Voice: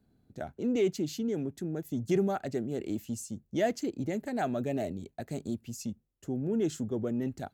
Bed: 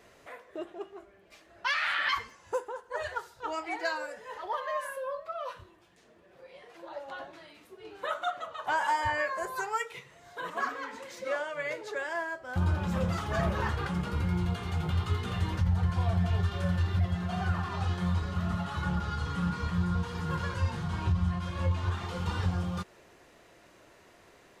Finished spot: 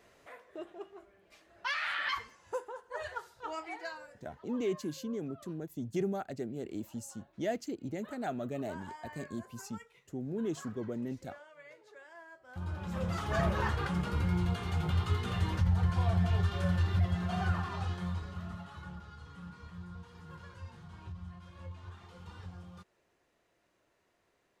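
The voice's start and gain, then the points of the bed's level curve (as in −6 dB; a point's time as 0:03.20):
3.85 s, −5.5 dB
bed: 0:03.61 −5 dB
0:04.36 −19.5 dB
0:12.15 −19.5 dB
0:13.29 −1 dB
0:17.47 −1 dB
0:19.12 −17 dB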